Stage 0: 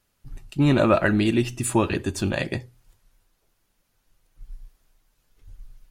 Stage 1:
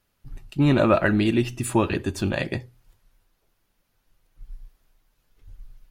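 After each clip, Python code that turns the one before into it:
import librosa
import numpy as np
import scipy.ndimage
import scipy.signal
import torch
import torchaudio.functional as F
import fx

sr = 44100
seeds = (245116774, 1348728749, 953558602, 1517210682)

y = fx.peak_eq(x, sr, hz=7900.0, db=-5.0, octaves=1.1)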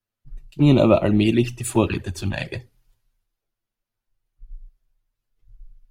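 y = fx.env_flanger(x, sr, rest_ms=8.9, full_db=-16.0)
y = fx.band_widen(y, sr, depth_pct=40)
y = y * 10.0 ** (3.5 / 20.0)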